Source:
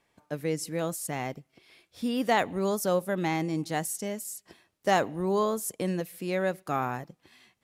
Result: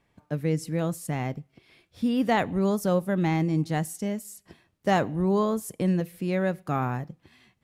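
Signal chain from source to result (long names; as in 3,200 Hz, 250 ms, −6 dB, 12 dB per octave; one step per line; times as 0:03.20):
bass and treble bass +10 dB, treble −5 dB
on a send: convolution reverb RT60 0.35 s, pre-delay 6 ms, DRR 23 dB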